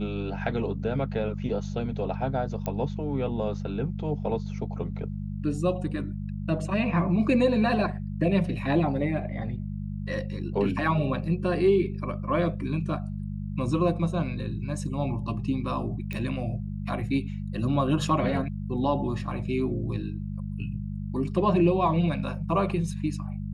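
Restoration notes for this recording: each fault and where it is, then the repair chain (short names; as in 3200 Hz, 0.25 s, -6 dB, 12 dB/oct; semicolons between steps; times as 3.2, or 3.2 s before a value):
hum 50 Hz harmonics 4 -33 dBFS
2.66 pop -18 dBFS
16.13 pop -21 dBFS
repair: de-click; de-hum 50 Hz, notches 4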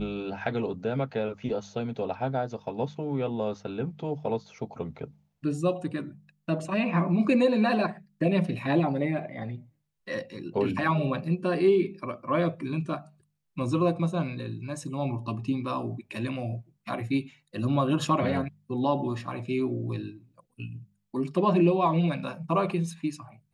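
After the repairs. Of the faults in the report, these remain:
none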